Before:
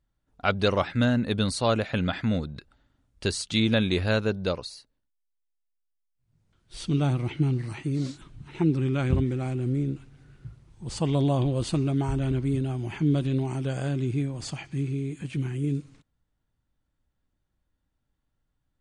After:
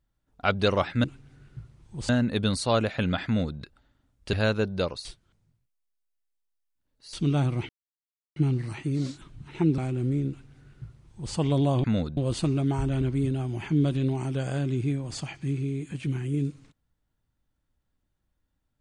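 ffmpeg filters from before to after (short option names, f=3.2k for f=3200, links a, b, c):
-filter_complex "[0:a]asplit=10[a][b][c][d][e][f][g][h][i][j];[a]atrim=end=1.042[k];[b]atrim=start=9.918:end=10.972[l];[c]atrim=start=1.038:end=3.282[m];[d]atrim=start=3.998:end=4.722[n];[e]atrim=start=4.718:end=6.802,asetpts=PTS-STARTPTS,areverse[o];[f]atrim=start=6.798:end=7.36,asetpts=PTS-STARTPTS,afade=t=out:st=0.558:d=0.004:c=hsin,apad=pad_dur=0.67[p];[g]atrim=start=7.36:end=8.782,asetpts=PTS-STARTPTS,afade=t=in:d=0.004:c=hsin[q];[h]atrim=start=9.408:end=11.472[r];[i]atrim=start=2.208:end=2.542[s];[j]atrim=start=11.468[t];[k][l]acrossfade=d=0.004:c1=hsin:c2=hsin[u];[u][m]acrossfade=d=0.004:c1=hsin:c2=hsin[v];[v][n]acrossfade=d=0.004:c1=hsin:c2=hsin[w];[w][o]acrossfade=d=0.004:c1=hsin:c2=hsin[x];[p][q]concat=n=2:v=0:a=1[y];[x][y]acrossfade=d=0.004:c1=hsin:c2=hsin[z];[z][r]acrossfade=d=0.004:c1=hsin:c2=hsin[aa];[aa][s]acrossfade=d=0.004:c1=hsin:c2=hsin[ab];[ab][t]acrossfade=d=0.004:c1=hsin:c2=hsin"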